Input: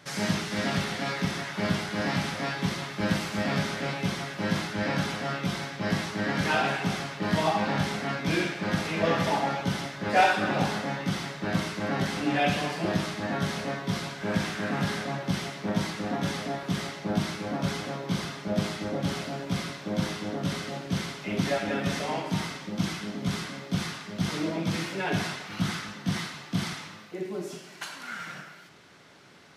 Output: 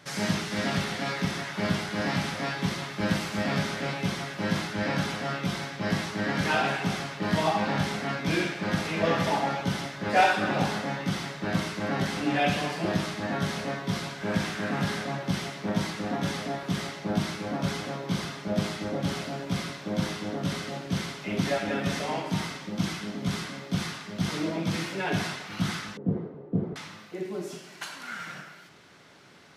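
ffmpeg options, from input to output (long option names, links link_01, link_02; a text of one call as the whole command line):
ffmpeg -i in.wav -filter_complex "[0:a]asettb=1/sr,asplit=3[link_01][link_02][link_03];[link_01]atrim=end=25.974[link_04];[link_02]atrim=start=25.97:end=26.76,asetpts=PTS-STARTPTS,afade=type=in:duration=0.004:curve=qsin,afade=type=out:start_time=0.786:duration=0.004:curve=qsin,lowpass=frequency=450:width_type=q:width=5.5[link_05];[link_03]atrim=start=26.756[link_06];[link_04][link_05]acrossfade=duration=0.004:curve1=hsin:curve2=qsin[link_07];[link_07][link_06]acrossfade=duration=0.004:curve1=qsin:curve2=hsin" out.wav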